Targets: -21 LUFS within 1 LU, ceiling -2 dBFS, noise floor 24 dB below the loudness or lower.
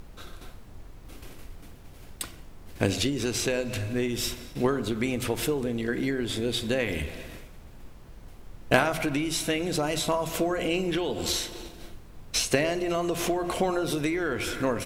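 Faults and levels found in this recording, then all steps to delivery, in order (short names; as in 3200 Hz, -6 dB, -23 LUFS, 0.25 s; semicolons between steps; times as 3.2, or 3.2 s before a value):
noise floor -47 dBFS; noise floor target -52 dBFS; loudness -28.0 LUFS; peak -4.5 dBFS; loudness target -21.0 LUFS
-> noise print and reduce 6 dB; gain +7 dB; limiter -2 dBFS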